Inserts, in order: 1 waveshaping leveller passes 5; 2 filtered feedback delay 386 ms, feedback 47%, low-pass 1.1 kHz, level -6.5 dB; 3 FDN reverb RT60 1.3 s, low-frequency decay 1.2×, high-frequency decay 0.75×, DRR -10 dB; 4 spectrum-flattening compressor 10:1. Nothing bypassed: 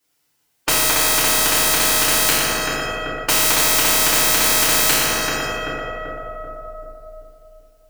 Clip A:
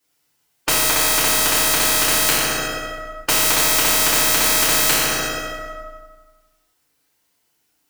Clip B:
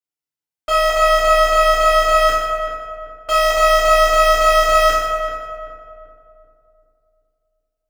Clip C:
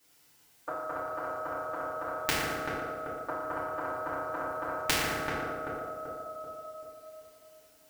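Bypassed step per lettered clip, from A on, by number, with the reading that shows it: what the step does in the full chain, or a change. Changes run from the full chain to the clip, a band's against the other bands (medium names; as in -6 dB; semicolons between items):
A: 2, momentary loudness spread change -3 LU; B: 4, 8 kHz band -18.0 dB; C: 1, crest factor change +10.0 dB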